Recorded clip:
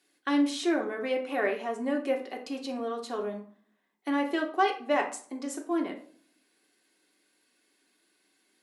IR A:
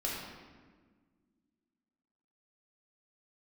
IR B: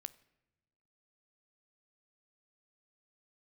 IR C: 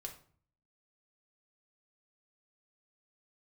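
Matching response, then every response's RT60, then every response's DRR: C; 1.5 s, not exponential, 0.50 s; -5.5, 15.5, 1.0 dB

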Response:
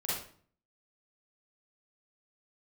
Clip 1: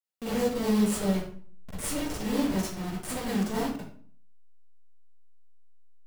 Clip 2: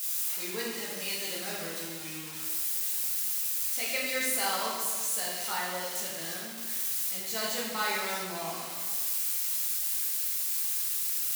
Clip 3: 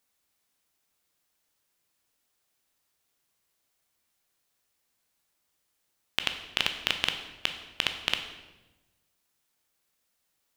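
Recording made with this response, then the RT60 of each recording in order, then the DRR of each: 1; 0.50, 1.6, 1.1 s; -8.5, -5.5, 6.0 dB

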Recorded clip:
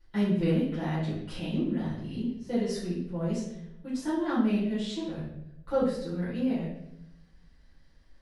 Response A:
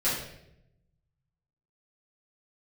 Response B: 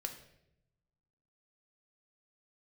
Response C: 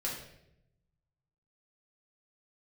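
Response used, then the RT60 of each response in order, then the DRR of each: A; 0.80, 0.80, 0.80 s; -12.0, 4.5, -5.0 dB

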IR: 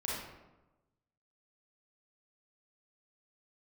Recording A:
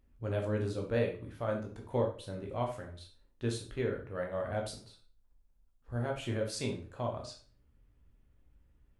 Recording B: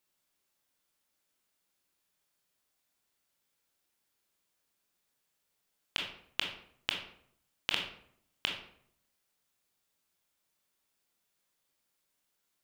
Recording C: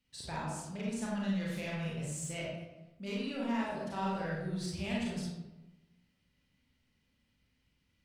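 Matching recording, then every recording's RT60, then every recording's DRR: C; 0.45, 0.65, 1.1 s; 0.5, 1.0, -6.0 dB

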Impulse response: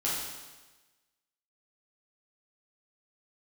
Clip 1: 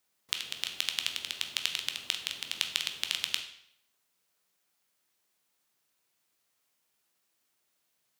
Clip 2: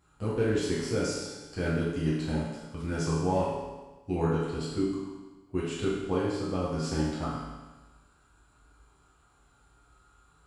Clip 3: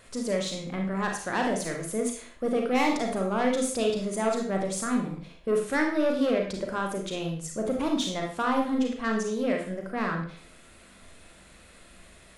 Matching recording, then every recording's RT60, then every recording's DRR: 2; 0.70, 1.2, 0.45 s; 4.5, -8.0, 1.0 dB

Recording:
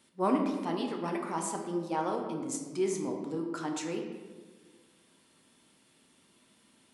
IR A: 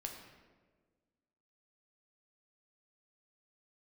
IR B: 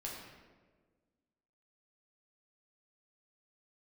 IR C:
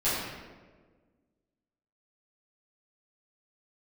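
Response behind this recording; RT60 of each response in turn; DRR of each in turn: A; 1.5, 1.5, 1.5 s; 1.5, -4.0, -13.5 dB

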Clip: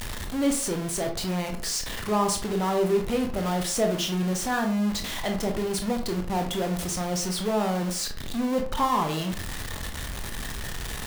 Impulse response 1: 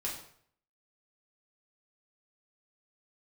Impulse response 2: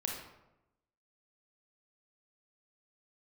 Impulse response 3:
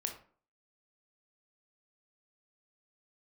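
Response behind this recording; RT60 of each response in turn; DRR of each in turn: 3; 0.60, 0.90, 0.45 s; -4.5, -0.5, 3.5 dB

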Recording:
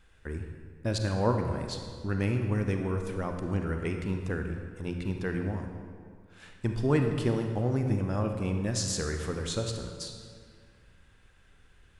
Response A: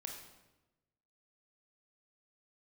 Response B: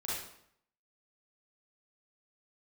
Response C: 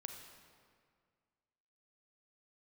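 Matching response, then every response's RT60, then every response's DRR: C; 1.0, 0.70, 2.0 s; 1.5, -8.0, 4.0 dB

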